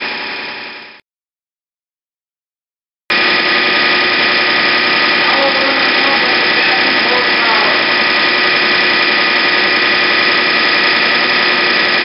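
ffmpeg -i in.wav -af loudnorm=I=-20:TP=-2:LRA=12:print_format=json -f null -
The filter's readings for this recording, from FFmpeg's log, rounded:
"input_i" : "-9.7",
"input_tp" : "-1.3",
"input_lra" : "5.3",
"input_thresh" : "-20.0",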